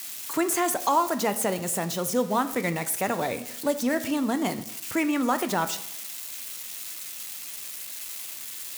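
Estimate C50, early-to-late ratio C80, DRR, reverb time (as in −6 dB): 14.0 dB, 16.5 dB, 9.5 dB, 0.75 s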